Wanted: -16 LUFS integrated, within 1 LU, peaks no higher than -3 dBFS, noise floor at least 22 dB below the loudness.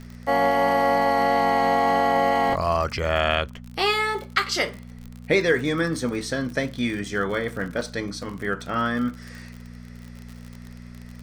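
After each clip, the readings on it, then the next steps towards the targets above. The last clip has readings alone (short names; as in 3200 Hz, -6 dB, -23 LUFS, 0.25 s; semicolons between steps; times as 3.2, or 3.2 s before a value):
ticks 48/s; hum 60 Hz; harmonics up to 240 Hz; hum level -39 dBFS; loudness -23.0 LUFS; peak -4.5 dBFS; loudness target -16.0 LUFS
-> de-click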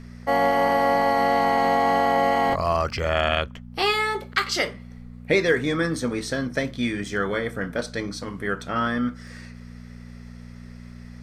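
ticks 0.62/s; hum 60 Hz; harmonics up to 240 Hz; hum level -39 dBFS
-> de-hum 60 Hz, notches 4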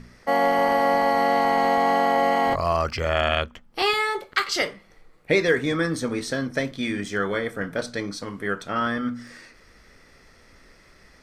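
hum none; loudness -23.5 LUFS; peak -6.0 dBFS; loudness target -16.0 LUFS
-> gain +7.5 dB; limiter -3 dBFS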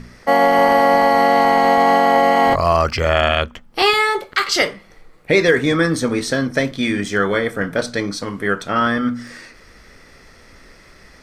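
loudness -16.5 LUFS; peak -3.0 dBFS; noise floor -47 dBFS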